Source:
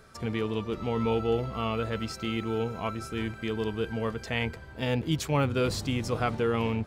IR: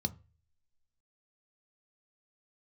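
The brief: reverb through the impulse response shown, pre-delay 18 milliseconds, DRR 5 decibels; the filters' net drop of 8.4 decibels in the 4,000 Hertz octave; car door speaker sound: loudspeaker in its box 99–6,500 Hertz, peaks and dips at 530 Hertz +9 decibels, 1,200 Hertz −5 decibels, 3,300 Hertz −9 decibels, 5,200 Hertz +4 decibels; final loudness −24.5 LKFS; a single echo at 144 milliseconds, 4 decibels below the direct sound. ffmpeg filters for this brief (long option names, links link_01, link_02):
-filter_complex "[0:a]equalizer=frequency=4000:width_type=o:gain=-7,aecho=1:1:144:0.631,asplit=2[link_01][link_02];[1:a]atrim=start_sample=2205,adelay=18[link_03];[link_02][link_03]afir=irnorm=-1:irlink=0,volume=-6dB[link_04];[link_01][link_04]amix=inputs=2:normalize=0,highpass=99,equalizer=frequency=530:width_type=q:width=4:gain=9,equalizer=frequency=1200:width_type=q:width=4:gain=-5,equalizer=frequency=3300:width_type=q:width=4:gain=-9,equalizer=frequency=5200:width_type=q:width=4:gain=4,lowpass=frequency=6500:width=0.5412,lowpass=frequency=6500:width=1.3066,volume=-0.5dB"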